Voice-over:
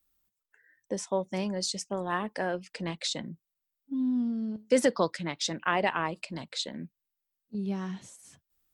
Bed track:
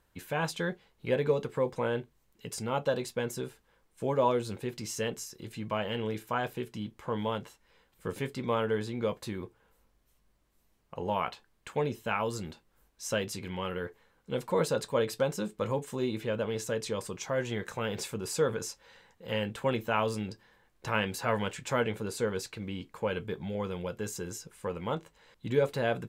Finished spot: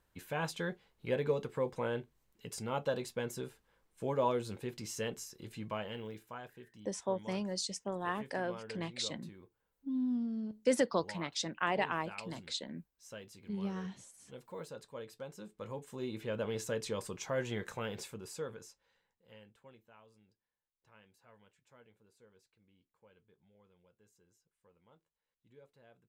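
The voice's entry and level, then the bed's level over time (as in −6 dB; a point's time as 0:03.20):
5.95 s, −5.5 dB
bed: 0:05.62 −5 dB
0:06.55 −17.5 dB
0:15.19 −17.5 dB
0:16.47 −4 dB
0:17.68 −4 dB
0:20.03 −33 dB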